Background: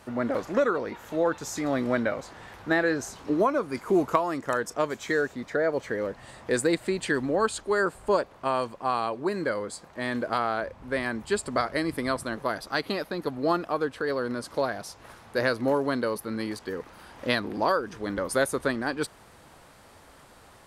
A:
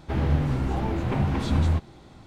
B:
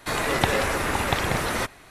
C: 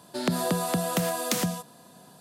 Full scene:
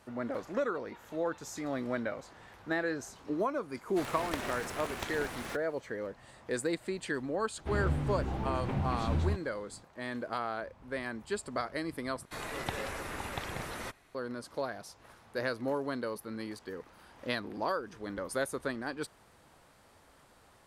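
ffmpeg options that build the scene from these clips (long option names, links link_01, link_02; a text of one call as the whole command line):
ffmpeg -i bed.wav -i cue0.wav -i cue1.wav -filter_complex "[2:a]asplit=2[link_01][link_02];[0:a]volume=-8.5dB[link_03];[link_01]aeval=exprs='val(0)*sgn(sin(2*PI*170*n/s))':channel_layout=same[link_04];[link_03]asplit=2[link_05][link_06];[link_05]atrim=end=12.254[link_07];[link_02]atrim=end=1.9,asetpts=PTS-STARTPTS,volume=-14.5dB[link_08];[link_06]atrim=start=14.146[link_09];[link_04]atrim=end=1.9,asetpts=PTS-STARTPTS,volume=-15.5dB,afade=type=in:duration=0.004:curve=hsin,afade=type=out:start_time=1.896:duration=0.004:curve=hsin,adelay=3900[link_10];[1:a]atrim=end=2.26,asetpts=PTS-STARTPTS,volume=-8.5dB,afade=type=in:duration=0.004:curve=hsin,afade=type=out:start_time=2.256:duration=0.004:curve=hsin,adelay=7570[link_11];[link_07][link_08]acrossfade=duration=0.004:curve1=hsin:curve2=hsin[link_12];[link_12][link_09]acrossfade=duration=0.004:curve1=hsin:curve2=hsin[link_13];[link_13][link_10][link_11]amix=inputs=3:normalize=0" out.wav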